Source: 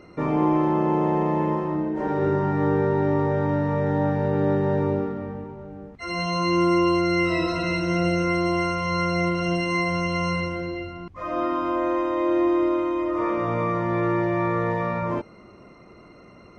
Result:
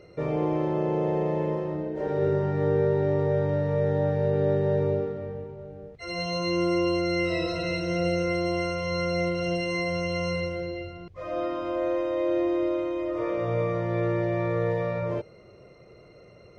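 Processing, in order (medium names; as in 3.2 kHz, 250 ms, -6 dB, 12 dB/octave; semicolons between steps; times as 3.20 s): ten-band graphic EQ 125 Hz +7 dB, 250 Hz -11 dB, 500 Hz +11 dB, 1 kHz -9 dB, 4 kHz +4 dB; trim -4.5 dB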